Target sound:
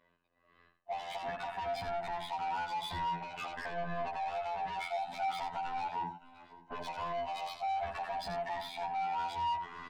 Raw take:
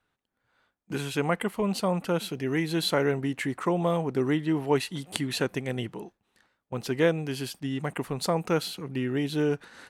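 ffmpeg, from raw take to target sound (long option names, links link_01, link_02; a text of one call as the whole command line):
ffmpeg -i in.wav -filter_complex "[0:a]afftfilt=real='real(if(lt(b,1008),b+24*(1-2*mod(floor(b/24),2)),b),0)':imag='imag(if(lt(b,1008),b+24*(1-2*mod(floor(b/24),2)),b),0)':win_size=2048:overlap=0.75,afftfilt=real='hypot(re,im)*cos(PI*b)':imag='0':win_size=2048:overlap=0.75,acompressor=threshold=-31dB:ratio=3,lowpass=2800,alimiter=level_in=4dB:limit=-24dB:level=0:latency=1:release=44,volume=-4dB,equalizer=frequency=200:width=3.8:gain=5.5,asplit=2[link_01][link_02];[link_02]aecho=0:1:565|1130:0.0794|0.0262[link_03];[link_01][link_03]amix=inputs=2:normalize=0,adynamicequalizer=threshold=0.00126:dfrequency=300:dqfactor=1.4:tfrequency=300:tqfactor=1.4:attack=5:release=100:ratio=0.375:range=3:mode=cutabove:tftype=bell,acontrast=74,asplit=2[link_04][link_05];[link_05]aecho=0:1:82:0.282[link_06];[link_04][link_06]amix=inputs=2:normalize=0,asoftclip=type=tanh:threshold=-34dB,asplit=2[link_07][link_08];[link_08]adelay=9.2,afreqshift=-0.3[link_09];[link_07][link_09]amix=inputs=2:normalize=1,volume=4.5dB" out.wav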